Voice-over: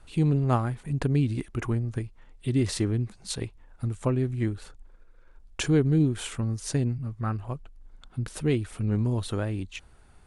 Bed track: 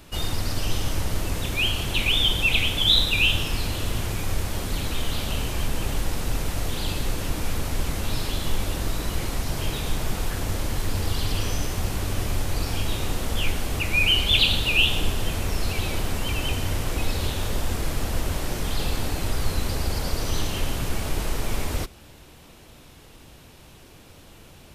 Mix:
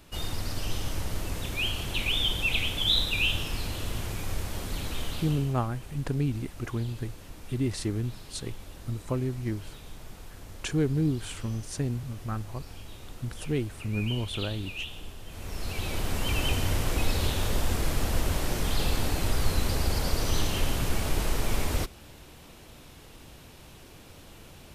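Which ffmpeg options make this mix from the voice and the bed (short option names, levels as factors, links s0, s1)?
-filter_complex "[0:a]adelay=5050,volume=0.631[s0];[1:a]volume=3.55,afade=t=out:st=5.03:d=0.54:silence=0.251189,afade=t=in:st=15.27:d=1.11:silence=0.141254[s1];[s0][s1]amix=inputs=2:normalize=0"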